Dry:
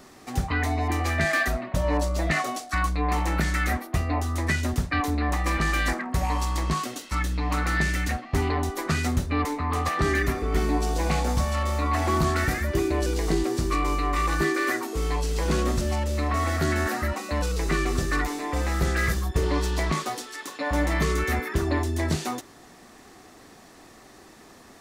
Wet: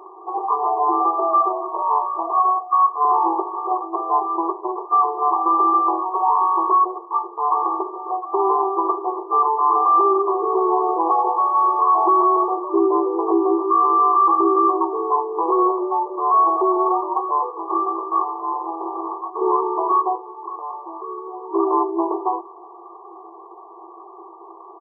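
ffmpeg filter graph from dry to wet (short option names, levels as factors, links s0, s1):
-filter_complex "[0:a]asettb=1/sr,asplit=3[s0][s1][s2];[s0]atrim=end=1.824[s3];[s1]atrim=start=1.82:end=3.05,asetpts=PTS-STARTPTS,afade=t=in:d=0.004:c=qsin,afade=t=out:st=1.226:d=0.004:c=qsin,acontrast=81,bandpass=f=3100:t=q:w=0.68[s4];[s2]atrim=start=3.046[s5];[s3][s4]acrossfade=d=0.004:c1=hsin:c2=qsin[s6];[s6][s5]acrossfade=d=0.004:c1=qsin:c2=hsin,asettb=1/sr,asplit=3[s7][s8][s9];[s7]atrim=end=17.504[s10];[s8]atrim=start=17.5:end=19.42,asetpts=PTS-STARTPTS,afade=t=in:d=0.004:c=qsin,afade=t=out:st=1.916:d=0.004:c=qsin,aemphasis=mode=production:type=riaa,aeval=exprs='max(val(0),0)':c=same,asplit=2[s11][s12];[s12]adelay=24,volume=0.562[s13];[s11][s13]amix=inputs=2:normalize=0,atrim=end_sample=84672[s14];[s9]atrim=start=19.416[s15];[s10][s14]acrossfade=d=0.004:c1=hsin:c2=qsin[s16];[s16][s15]acrossfade=d=0.004:c1=qsin:c2=hsin,asettb=1/sr,asplit=3[s17][s18][s19];[s17]atrim=end=20.154[s20];[s18]atrim=start=20.15:end=21.53,asetpts=PTS-STARTPTS,afade=t=in:d=0.004:c=qsin,afade=t=out:st=1.376:d=0.004:c=qsin,lowpass=9500,acompressor=threshold=0.0141:ratio=4:attack=3.2:release=140:knee=1:detection=peak[s21];[s19]atrim=start=21.526[s22];[s20][s21]acrossfade=d=0.004:c1=hsin:c2=qsin[s23];[s23][s22]acrossfade=d=0.004:c1=qsin:c2=hsin,afftfilt=real='re*between(b*sr/4096,330,1200)':imag='im*between(b*sr/4096,330,1200)':win_size=4096:overlap=0.75,aecho=1:1:0.9:0.95,alimiter=level_in=8.91:limit=0.891:release=50:level=0:latency=1,volume=0.422"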